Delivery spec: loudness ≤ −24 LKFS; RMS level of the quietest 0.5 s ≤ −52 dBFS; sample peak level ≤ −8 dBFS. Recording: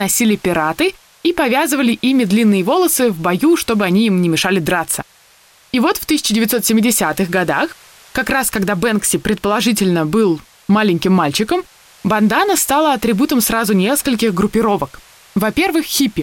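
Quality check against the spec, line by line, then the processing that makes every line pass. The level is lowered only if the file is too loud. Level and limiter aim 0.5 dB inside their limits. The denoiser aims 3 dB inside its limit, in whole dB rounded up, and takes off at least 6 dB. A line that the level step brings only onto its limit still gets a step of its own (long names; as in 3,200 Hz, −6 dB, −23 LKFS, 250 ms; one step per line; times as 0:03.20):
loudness −15.0 LKFS: out of spec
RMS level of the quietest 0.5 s −49 dBFS: out of spec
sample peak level −4.5 dBFS: out of spec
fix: level −9.5 dB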